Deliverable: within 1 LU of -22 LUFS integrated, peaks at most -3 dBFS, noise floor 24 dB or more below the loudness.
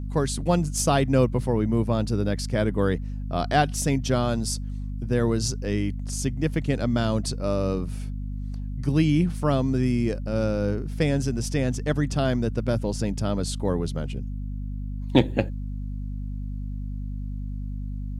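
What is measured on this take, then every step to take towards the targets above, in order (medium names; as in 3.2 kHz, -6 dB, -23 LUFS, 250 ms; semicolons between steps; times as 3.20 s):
hum 50 Hz; highest harmonic 250 Hz; hum level -28 dBFS; loudness -26.0 LUFS; peak level -2.5 dBFS; loudness target -22.0 LUFS
-> de-hum 50 Hz, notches 5; trim +4 dB; peak limiter -3 dBFS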